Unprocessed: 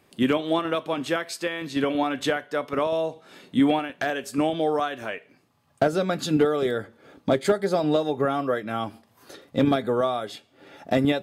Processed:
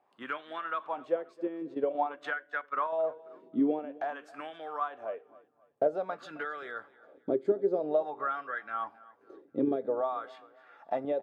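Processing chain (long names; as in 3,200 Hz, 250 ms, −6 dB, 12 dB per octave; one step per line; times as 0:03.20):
0:01.74–0:03.04: transient designer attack +3 dB, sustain −10 dB
LFO wah 0.5 Hz 340–1,600 Hz, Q 3.8
on a send: repeating echo 268 ms, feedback 35%, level −21 dB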